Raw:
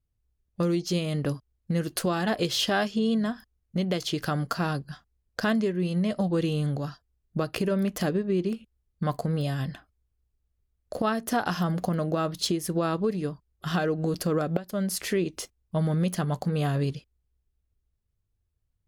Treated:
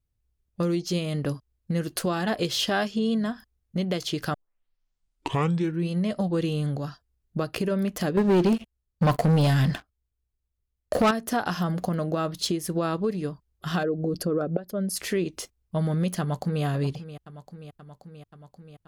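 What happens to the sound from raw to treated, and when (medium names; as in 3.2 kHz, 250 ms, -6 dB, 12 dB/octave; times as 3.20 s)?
4.34 s: tape start 1.55 s
8.17–11.11 s: waveshaping leveller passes 3
13.83–14.96 s: resonances exaggerated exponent 1.5
16.20–16.64 s: echo throw 530 ms, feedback 75%, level -13.5 dB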